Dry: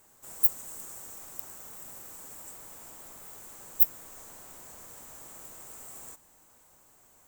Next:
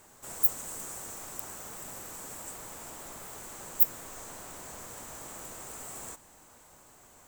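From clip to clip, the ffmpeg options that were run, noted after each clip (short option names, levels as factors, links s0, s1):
-af "highshelf=f=11000:g=-9.5,volume=2.24"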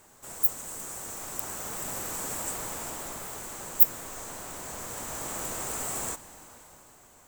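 -af "dynaudnorm=f=200:g=11:m=3.16"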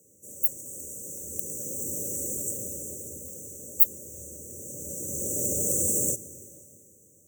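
-af "afreqshift=75,dynaudnorm=f=210:g=13:m=4.47,afftfilt=real='re*(1-between(b*sr/4096,610,5700))':imag='im*(1-between(b*sr/4096,610,5700))':win_size=4096:overlap=0.75,volume=0.891"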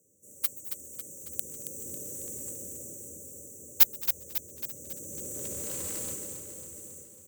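-filter_complex "[0:a]asplit=2[s0][s1];[s1]aecho=0:1:129|211|223|227|271|885:0.188|0.2|0.112|0.237|0.141|0.2[s2];[s0][s2]amix=inputs=2:normalize=0,aeval=exprs='0.841*(cos(1*acos(clip(val(0)/0.841,-1,1)))-cos(1*PI/2))+0.168*(cos(7*acos(clip(val(0)/0.841,-1,1)))-cos(7*PI/2))':c=same,asplit=2[s3][s4];[s4]aecho=0:1:274|548|822|1096|1370|1644|1918:0.376|0.214|0.122|0.0696|0.0397|0.0226|0.0129[s5];[s3][s5]amix=inputs=2:normalize=0"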